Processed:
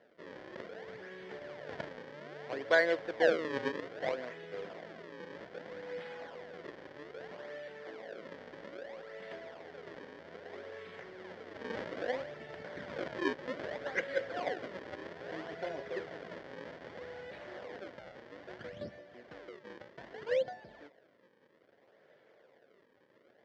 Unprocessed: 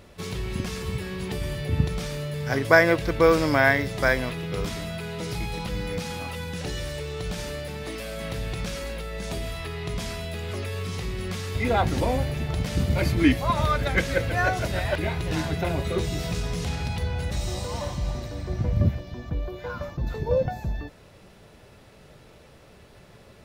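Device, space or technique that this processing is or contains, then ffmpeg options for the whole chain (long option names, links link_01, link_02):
circuit-bent sampling toy: -af "acrusher=samples=36:mix=1:aa=0.000001:lfo=1:lforange=57.6:lforate=0.62,highpass=440,equalizer=frequency=520:width_type=q:width=4:gain=4,equalizer=frequency=870:width_type=q:width=4:gain=-5,equalizer=frequency=1200:width_type=q:width=4:gain=-8,equalizer=frequency=1800:width_type=q:width=4:gain=4,equalizer=frequency=2600:width_type=q:width=4:gain=-9,equalizer=frequency=3900:width_type=q:width=4:gain=-7,lowpass=frequency=4000:width=0.5412,lowpass=frequency=4000:width=1.3066,volume=-8.5dB"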